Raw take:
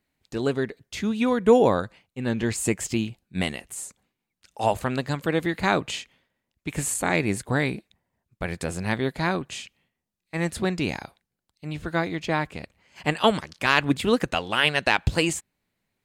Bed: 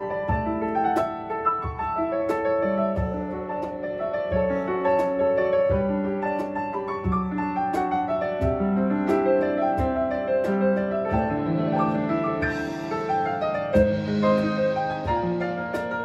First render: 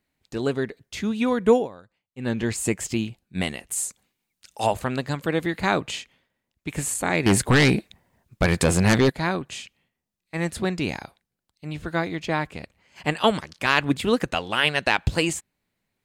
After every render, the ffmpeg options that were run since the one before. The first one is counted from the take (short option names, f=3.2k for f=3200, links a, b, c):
-filter_complex "[0:a]asettb=1/sr,asplit=3[a][b][c];[a]atrim=end=3.714[d];[b]atrim=start=3.71:end=4.67,asetpts=PTS-STARTPTS,afade=t=in:d=0.004:c=qsin,afade=t=out:st=0.956:d=0.004:c=qsin,highshelf=f=2.7k:g=9[e];[c]atrim=start=4.666[f];[d][e]acrossfade=d=0.004:c1=hsin:c2=qsin[g];[g][f]acrossfade=d=0.004:c1=qsin:c2=hsin,asettb=1/sr,asplit=3[h][i][j];[h]atrim=end=7.264[k];[i]atrim=start=7.26:end=9.1,asetpts=PTS-STARTPTS,afade=t=in:d=0.004:c=qsin,afade=t=out:st=1.836:d=0.004:c=qsin,aeval=exprs='0.266*sin(PI/2*2.51*val(0)/0.266)':c=same[l];[j]atrim=start=9.096[m];[k][l]acrossfade=d=0.004:c1=hsin:c2=qsin[n];[n][m]acrossfade=d=0.004:c1=qsin:c2=hsin,asplit=3[o][p][q];[o]atrim=end=1.68,asetpts=PTS-STARTPTS,afade=t=out:st=1.51:d=0.17:silence=0.0944061[r];[p]atrim=start=1.68:end=2.09,asetpts=PTS-STARTPTS,volume=-20.5dB[s];[q]atrim=start=2.09,asetpts=PTS-STARTPTS,afade=t=in:d=0.17:silence=0.0944061[t];[r][s][t]concat=n=3:v=0:a=1"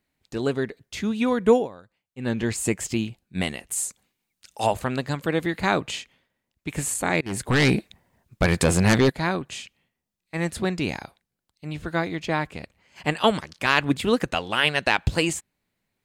-filter_complex "[0:a]asplit=2[a][b];[a]atrim=end=7.21,asetpts=PTS-STARTPTS,afade=t=out:st=7.206:d=0.004:c=hsin:silence=0.0749894[c];[b]atrim=start=7.21,asetpts=PTS-STARTPTS,afade=t=in:d=0.52:silence=0.0749894[d];[c][d]concat=n=2:v=0:a=1"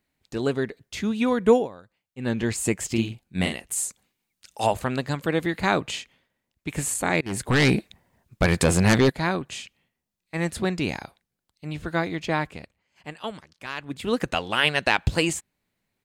-filter_complex "[0:a]asplit=3[a][b][c];[a]afade=t=out:st=2.95:d=0.02[d];[b]asplit=2[e][f];[f]adelay=44,volume=-5dB[g];[e][g]amix=inputs=2:normalize=0,afade=t=in:st=2.95:d=0.02,afade=t=out:st=3.53:d=0.02[h];[c]afade=t=in:st=3.53:d=0.02[i];[d][h][i]amix=inputs=3:normalize=0,asplit=3[j][k][l];[j]atrim=end=12.84,asetpts=PTS-STARTPTS,afade=t=out:st=12.43:d=0.41:silence=0.211349[m];[k]atrim=start=12.84:end=13.88,asetpts=PTS-STARTPTS,volume=-13.5dB[n];[l]atrim=start=13.88,asetpts=PTS-STARTPTS,afade=t=in:d=0.41:silence=0.211349[o];[m][n][o]concat=n=3:v=0:a=1"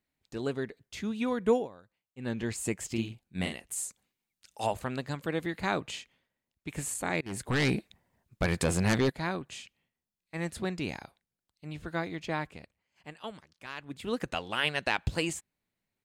-af "volume=-8dB"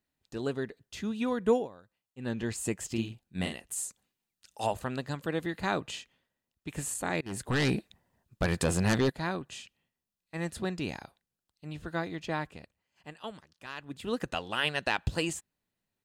-af "bandreject=f=2.2k:w=9.6"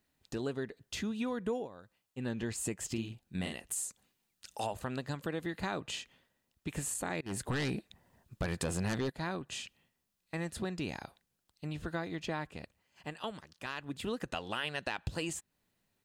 -filter_complex "[0:a]asplit=2[a][b];[b]alimiter=limit=-22.5dB:level=0:latency=1,volume=1dB[c];[a][c]amix=inputs=2:normalize=0,acompressor=threshold=-38dB:ratio=2.5"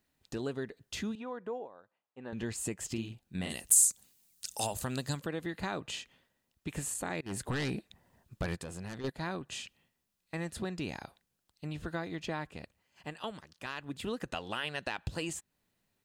-filter_complex "[0:a]asettb=1/sr,asplit=3[a][b][c];[a]atrim=end=1.154[d];[b]atrim=start=1.15:end=2.33,asetpts=PTS-STARTPTS,afade=t=in:d=0.004:c=qsin,afade=t=out:st=1.176:d=0.004:c=qsin,bandpass=f=810:t=q:w=0.89[e];[c]atrim=start=2.326[f];[d][e]acrossfade=d=0.004:c1=hsin:c2=qsin[g];[g][f]acrossfade=d=0.004:c1=qsin:c2=hsin,asplit=3[h][i][j];[h]afade=t=out:st=3.49:d=0.02[k];[i]bass=f=250:g=4,treble=f=4k:g=15,afade=t=in:st=3.49:d=0.02,afade=t=out:st=5.19:d=0.02[l];[j]afade=t=in:st=5.19:d=0.02[m];[k][l][m]amix=inputs=3:normalize=0,asplit=3[n][o][p];[n]atrim=end=8.562[q];[o]atrim=start=8.558:end=9.042,asetpts=PTS-STARTPTS,volume=-8.5dB[r];[p]atrim=start=9.038[s];[q][r]acrossfade=d=0.004:c1=hsin:c2=hsin[t];[t][s]acrossfade=d=0.004:c1=hsin:c2=hsin"